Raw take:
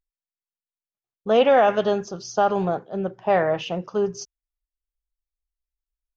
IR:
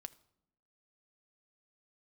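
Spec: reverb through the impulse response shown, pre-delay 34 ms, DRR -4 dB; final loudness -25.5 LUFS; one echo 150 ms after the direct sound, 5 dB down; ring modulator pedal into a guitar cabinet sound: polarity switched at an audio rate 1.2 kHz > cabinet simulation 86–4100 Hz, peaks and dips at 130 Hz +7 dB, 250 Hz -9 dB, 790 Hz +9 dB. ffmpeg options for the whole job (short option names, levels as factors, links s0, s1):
-filter_complex "[0:a]aecho=1:1:150:0.562,asplit=2[s0][s1];[1:a]atrim=start_sample=2205,adelay=34[s2];[s1][s2]afir=irnorm=-1:irlink=0,volume=2.99[s3];[s0][s3]amix=inputs=2:normalize=0,aeval=exprs='val(0)*sgn(sin(2*PI*1200*n/s))':c=same,highpass=86,equalizer=f=130:t=q:w=4:g=7,equalizer=f=250:t=q:w=4:g=-9,equalizer=f=790:t=q:w=4:g=9,lowpass=f=4100:w=0.5412,lowpass=f=4100:w=1.3066,volume=0.224"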